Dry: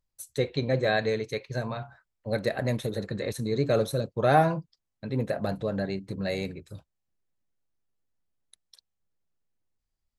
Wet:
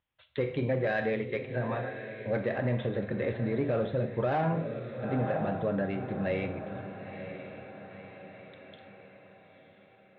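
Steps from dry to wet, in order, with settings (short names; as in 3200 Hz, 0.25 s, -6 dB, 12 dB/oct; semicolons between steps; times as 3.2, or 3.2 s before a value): steep low-pass 3500 Hz 96 dB/oct; diffused feedback echo 0.962 s, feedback 43%, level -12 dB; soft clip -14.5 dBFS, distortion -18 dB; HPF 60 Hz; on a send at -8 dB: reverb, pre-delay 3 ms; on the sum: limiter -20.5 dBFS, peak gain reduction 8 dB; notches 50/100 Hz; mismatched tape noise reduction encoder only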